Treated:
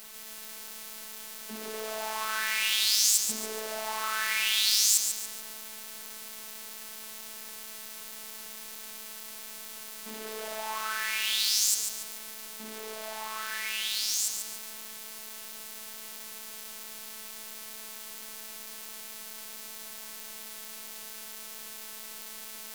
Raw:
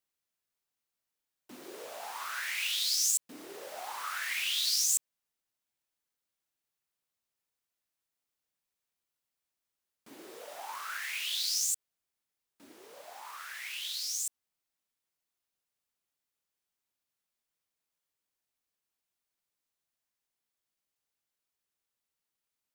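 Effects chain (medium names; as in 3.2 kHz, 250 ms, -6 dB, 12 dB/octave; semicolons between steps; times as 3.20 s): jump at every zero crossing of -41 dBFS; robot voice 218 Hz; bit-crushed delay 142 ms, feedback 35%, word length 8-bit, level -6.5 dB; trim +3.5 dB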